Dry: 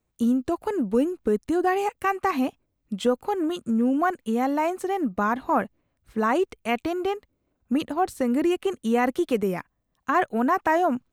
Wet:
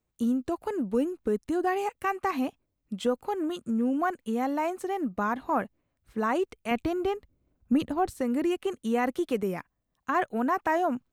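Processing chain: 6.71–8.1 low shelf 210 Hz +11.5 dB; gain -4.5 dB

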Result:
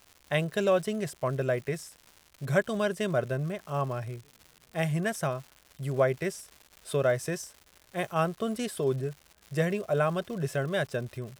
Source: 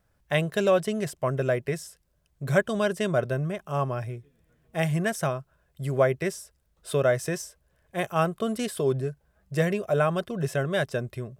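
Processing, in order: crackle 250/s -37 dBFS; gain -3 dB

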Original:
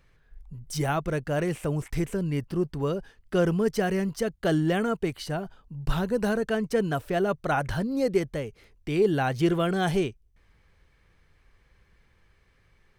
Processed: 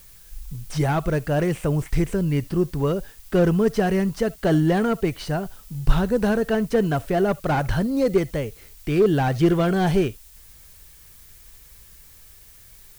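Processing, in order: low shelf 95 Hz +6.5 dB; added noise blue -54 dBFS; reverb, pre-delay 40 ms, DRR 23 dB; slew limiter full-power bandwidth 60 Hz; gain +4.5 dB

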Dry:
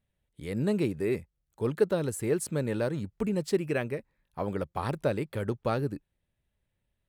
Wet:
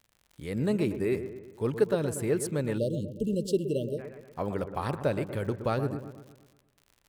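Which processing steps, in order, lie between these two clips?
crackle 73/s -44 dBFS; dark delay 0.119 s, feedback 51%, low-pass 1800 Hz, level -10 dB; spectral delete 2.78–3.99, 630–2700 Hz

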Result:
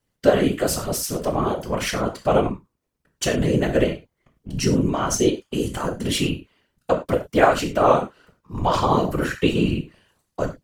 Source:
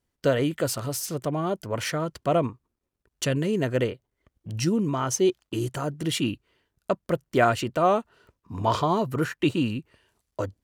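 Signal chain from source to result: non-linear reverb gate 0.13 s falling, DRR 3 dB; whisperiser; gain +3 dB

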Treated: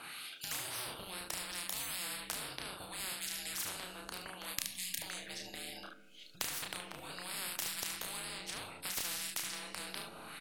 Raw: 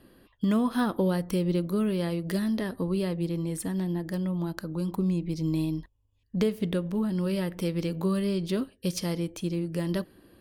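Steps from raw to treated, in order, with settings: buzz 100 Hz, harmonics 10, -62 dBFS -4 dB/oct; pre-emphasis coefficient 0.9; frequency shift -360 Hz; on a send: early reflections 32 ms -3.5 dB, 73 ms -10.5 dB; on the sum: wah 0.68 Hz 390–3600 Hz, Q 2.6; in parallel at -4 dB: backlash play -31 dBFS; on the sum: spectral gain 4.55–5.02, 320–1600 Hz -28 dB; two-slope reverb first 0.5 s, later 1.7 s, DRR 16 dB; spectral compressor 10:1; gain +16.5 dB

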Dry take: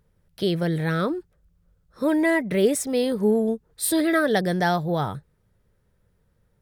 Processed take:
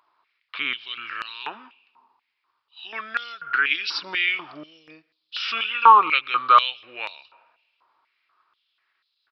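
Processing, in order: in parallel at 0 dB: level quantiser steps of 17 dB; on the sum: varispeed -29%; wow and flutter 25 cents; on a send at -23 dB: reverb RT60 1.2 s, pre-delay 95 ms; on the sum: downsampling 11025 Hz; stepped high-pass 4.1 Hz 1000–3900 Hz; gain +3 dB

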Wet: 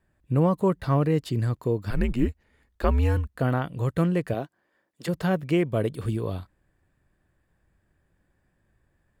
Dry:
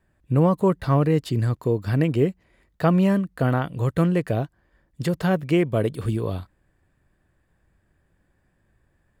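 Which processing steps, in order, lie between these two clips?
1.9–3.35 frequency shift -110 Hz; 4.33–5.07 HPF 190 Hz -> 430 Hz 12 dB/oct; gain -3 dB

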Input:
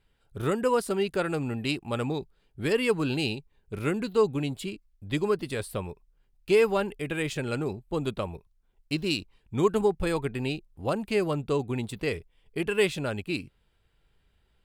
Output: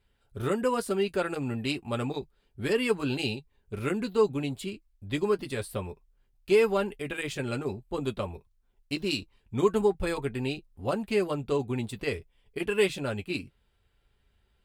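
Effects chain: notch comb 160 Hz

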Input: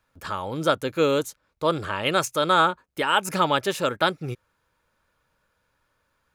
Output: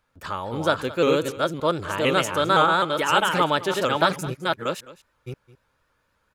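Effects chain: reverse delay 0.534 s, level -2.5 dB; high shelf 7900 Hz -4 dB; echo 0.212 s -18 dB; shaped vibrato saw up 3.9 Hz, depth 100 cents

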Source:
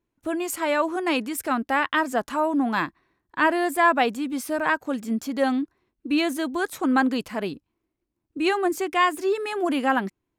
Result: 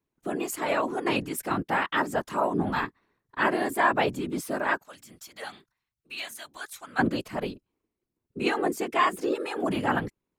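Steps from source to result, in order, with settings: 4.82–6.99 passive tone stack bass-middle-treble 10-0-10; whisperiser; gain -3.5 dB

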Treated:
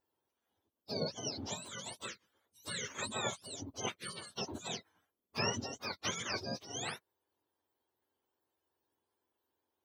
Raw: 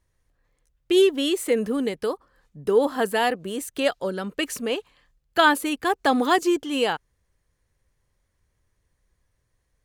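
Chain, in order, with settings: spectrum mirrored in octaves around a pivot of 1300 Hz; spectral gate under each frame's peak -10 dB weak; gain -5 dB

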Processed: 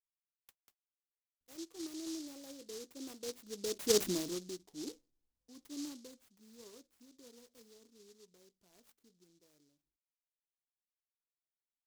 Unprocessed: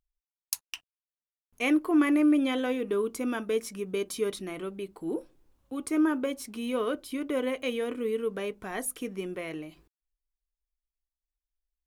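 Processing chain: Doppler pass-by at 4.04, 26 m/s, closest 2.4 m; dynamic EQ 330 Hz, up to +6 dB, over -58 dBFS, Q 1.2; noise-modulated delay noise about 5200 Hz, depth 0.19 ms; gain +1 dB

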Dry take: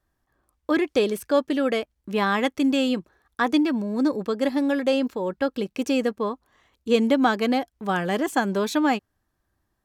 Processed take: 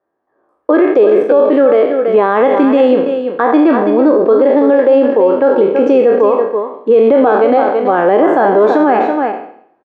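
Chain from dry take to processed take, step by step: spectral trails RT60 0.58 s; ladder band-pass 560 Hz, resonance 30%; feedback echo 83 ms, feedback 54%, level -20.5 dB; AGC gain up to 9.5 dB; echo 0.33 s -10 dB; maximiser +20.5 dB; gain -1 dB

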